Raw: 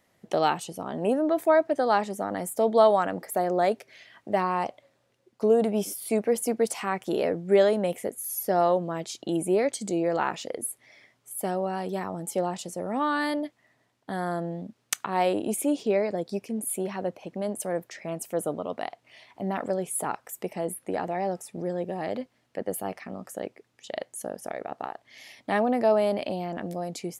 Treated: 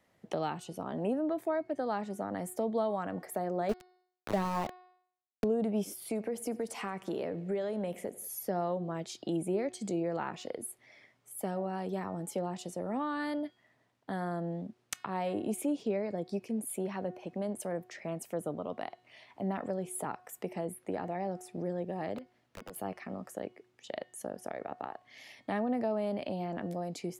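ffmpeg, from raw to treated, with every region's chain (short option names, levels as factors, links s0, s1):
-filter_complex "[0:a]asettb=1/sr,asplit=3[s0][s1][s2];[s0]atrim=end=3.694[s3];[s1]atrim=start=3.69:end=5.44,asetpts=PTS-STARTPTS,afade=t=in:d=0.004:c=qsin,afade=t=out:st=1.746:d=0.004:c=qsin,acontrast=61,aeval=exprs='val(0)*gte(abs(val(0)),0.075)':c=same[s4];[s2]atrim=start=5.436[s5];[s3][s4]acrossfade=d=0.004:c1=hsin:c2=qsin[s6];[s6][s5]acrossfade=d=0.004:c1=qsin:c2=hsin,asettb=1/sr,asplit=3[s7][s8][s9];[s7]atrim=end=6.064[s10];[s8]atrim=start=6.06:end=8.28,asetpts=PTS-STARTPTS,afade=t=in:d=0.004:c=qsin,afade=t=out:st=2.216:d=0.004:c=qsin,acompressor=threshold=0.0398:ratio=2:attack=3.2:release=140:knee=1:detection=peak,aecho=1:1:89|178|267|356:0.0794|0.0461|0.0267|0.0155,atrim=end_sample=97902[s11];[s9]atrim=start=8.276[s12];[s10][s11]acrossfade=d=0.004:c1=hsin:c2=qsin[s13];[s13][s12]acrossfade=d=0.004:c1=qsin:c2=hsin,asettb=1/sr,asplit=3[s14][s15][s16];[s14]atrim=end=22.184[s17];[s15]atrim=start=22.18:end=22.76,asetpts=PTS-STARTPTS,afade=t=in:d=0.004:c=qsin,afade=t=out:st=0.576:d=0.004:c=qsin,equalizer=f=8600:w=4.1:g=-2.5,acompressor=threshold=0.0112:ratio=5:attack=3.2:release=140:knee=1:detection=peak,aeval=exprs='(mod(47.3*val(0)+1,2)-1)/47.3':c=same[s18];[s16]atrim=start=22.756[s19];[s17][s18]acrossfade=d=0.004:c1=hsin:c2=qsin[s20];[s20][s19]acrossfade=d=0.004:c1=qsin:c2=hsin,highshelf=f=4500:g=-6.5,bandreject=f=364.7:t=h:w=4,bandreject=f=729.4:t=h:w=4,bandreject=f=1094.1:t=h:w=4,bandreject=f=1458.8:t=h:w=4,bandreject=f=1823.5:t=h:w=4,bandreject=f=2188.2:t=h:w=4,bandreject=f=2552.9:t=h:w=4,bandreject=f=2917.6:t=h:w=4,bandreject=f=3282.3:t=h:w=4,bandreject=f=3647:t=h:w=4,bandreject=f=4011.7:t=h:w=4,bandreject=f=4376.4:t=h:w=4,bandreject=f=4741.1:t=h:w=4,bandreject=f=5105.8:t=h:w=4,acrossover=split=250[s21][s22];[s22]acompressor=threshold=0.0224:ratio=2.5[s23];[s21][s23]amix=inputs=2:normalize=0,volume=0.75"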